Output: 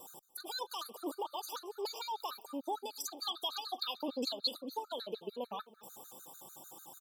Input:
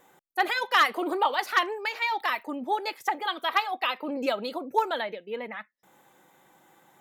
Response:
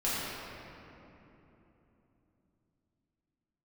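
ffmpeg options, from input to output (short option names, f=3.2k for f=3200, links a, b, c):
-filter_complex "[0:a]asuperstop=centerf=2000:order=4:qfactor=1.1,bass=f=250:g=-3,treble=f=4k:g=12,acompressor=threshold=-37dB:ratio=6,alimiter=level_in=9.5dB:limit=-24dB:level=0:latency=1:release=251,volume=-9.5dB,asettb=1/sr,asplit=3[a][b][c];[a]atrim=end=2.944[d];[b]atrim=start=2.94:end=4.57,asetpts=PTS-STARTPTS,afade=t=in:d=0.004:c=qsin,afade=t=out:st=1.626:d=0.004:c=qsin,equalizer=f=4.2k:t=o:w=1.1:g=11[e];[c]atrim=start=4.566[f];[d][e]acrossfade=d=0.004:c1=hsin:c2=qsin[g];[g][f]acrossfade=d=0.004:c1=qsin:c2=hsin,aecho=1:1:228|456|684|912:0.112|0.055|0.0269|0.0132,afftfilt=real='re*gt(sin(2*PI*6.7*pts/sr)*(1-2*mod(floor(b*sr/1024/1200),2)),0)':imag='im*gt(sin(2*PI*6.7*pts/sr)*(1-2*mod(floor(b*sr/1024/1200),2)),0)':win_size=1024:overlap=0.75,volume=6dB"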